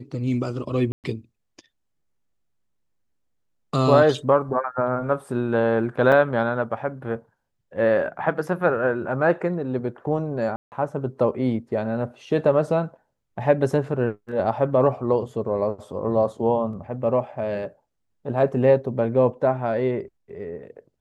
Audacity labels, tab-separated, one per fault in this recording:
0.920000	1.040000	gap 0.118 s
6.120000	6.120000	gap 4.2 ms
10.560000	10.720000	gap 0.159 s

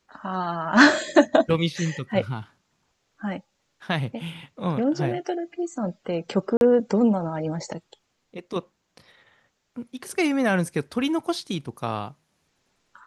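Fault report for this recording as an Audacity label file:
6.570000	6.610000	gap 41 ms

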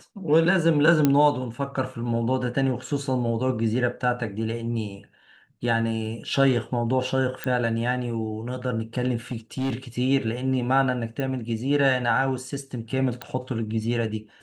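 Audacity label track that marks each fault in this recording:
1.050000	1.050000	pop -7 dBFS
7.440000	7.440000	pop -13 dBFS
9.310000	9.750000	clipped -22 dBFS
11.200000	11.200000	pop -17 dBFS
13.220000	13.220000	pop -17 dBFS

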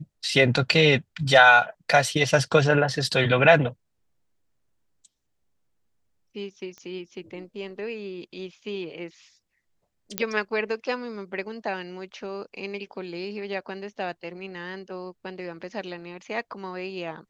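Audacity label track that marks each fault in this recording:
6.780000	6.780000	pop -28 dBFS
10.180000	10.180000	pop -7 dBFS

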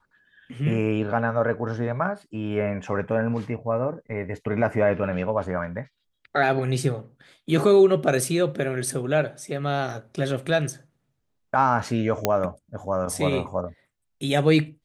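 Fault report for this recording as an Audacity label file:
12.250000	12.250000	pop -5 dBFS

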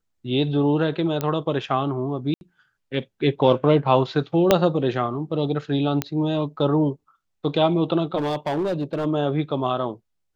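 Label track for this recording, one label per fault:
1.210000	1.210000	pop -11 dBFS
2.340000	2.410000	gap 71 ms
4.510000	4.510000	pop -1 dBFS
6.020000	6.020000	pop -8 dBFS
8.170000	9.060000	clipped -20 dBFS

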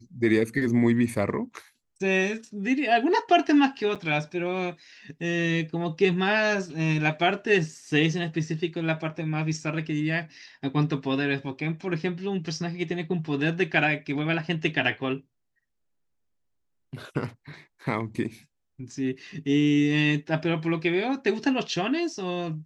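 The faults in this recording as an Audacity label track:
3.950000	3.960000	gap 6.8 ms

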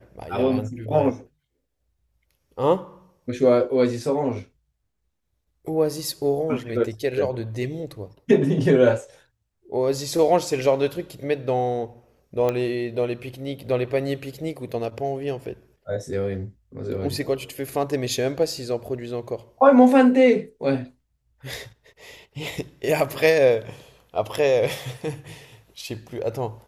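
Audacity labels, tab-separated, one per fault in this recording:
12.490000	12.490000	pop -12 dBFS

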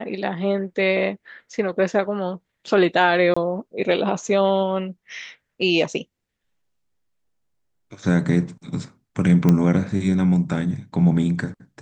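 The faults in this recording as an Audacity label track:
3.340000	3.370000	gap 25 ms
9.490000	9.490000	pop -7 dBFS

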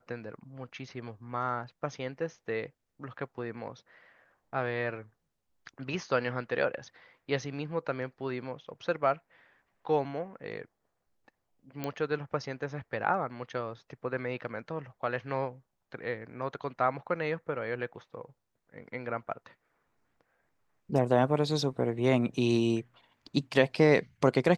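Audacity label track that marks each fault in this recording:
11.840000	11.840000	pop -19 dBFS

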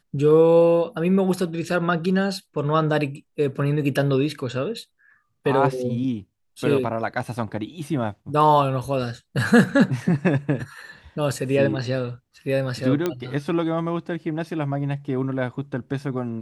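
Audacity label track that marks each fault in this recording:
13.060000	13.060000	pop -10 dBFS

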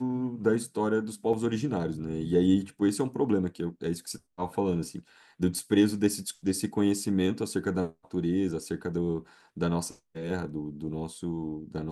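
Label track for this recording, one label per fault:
1.330000	1.330000	gap 4.1 ms

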